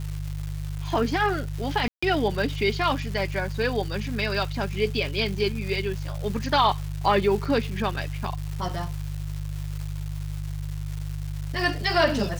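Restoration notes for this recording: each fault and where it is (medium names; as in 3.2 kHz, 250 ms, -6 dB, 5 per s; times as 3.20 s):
crackle 510 per s -33 dBFS
hum 50 Hz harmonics 3 -31 dBFS
1.88–2.02 s: dropout 145 ms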